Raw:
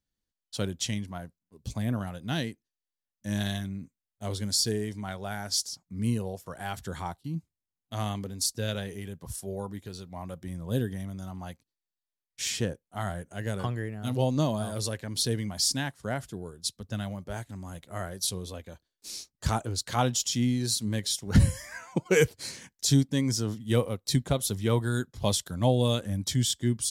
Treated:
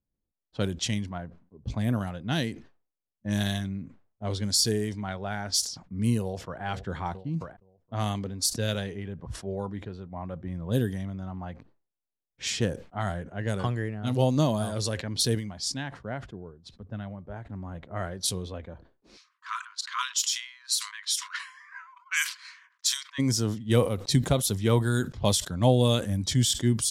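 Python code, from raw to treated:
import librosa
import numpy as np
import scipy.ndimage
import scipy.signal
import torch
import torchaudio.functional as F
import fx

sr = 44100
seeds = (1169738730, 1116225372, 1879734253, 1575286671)

y = fx.echo_throw(x, sr, start_s=6.2, length_s=0.42, ms=470, feedback_pct=50, wet_db=-17.0)
y = fx.brickwall_highpass(y, sr, low_hz=960.0, at=(19.16, 23.18), fade=0.02)
y = fx.edit(y, sr, fx.clip_gain(start_s=15.35, length_s=2.1, db=-5.5), tone=tone)
y = fx.env_lowpass(y, sr, base_hz=670.0, full_db=-25.5)
y = fx.sustainer(y, sr, db_per_s=130.0)
y = y * librosa.db_to_amplitude(2.5)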